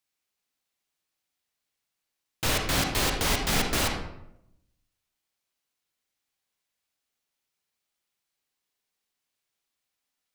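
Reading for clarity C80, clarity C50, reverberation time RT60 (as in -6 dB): 7.5 dB, 4.0 dB, 0.80 s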